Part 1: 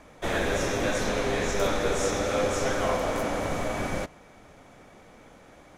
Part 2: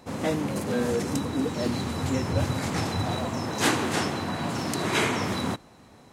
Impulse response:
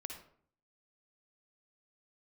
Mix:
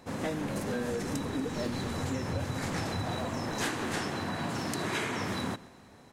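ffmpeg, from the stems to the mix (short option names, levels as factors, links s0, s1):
-filter_complex "[0:a]volume=0.133[s0];[1:a]equalizer=f=1700:t=o:w=0.34:g=4,volume=0.708,asplit=2[s1][s2];[s2]volume=0.0708,aecho=0:1:131|262|393|524|655|786|917:1|0.49|0.24|0.118|0.0576|0.0282|0.0138[s3];[s0][s1][s3]amix=inputs=3:normalize=0,acompressor=threshold=0.0355:ratio=6"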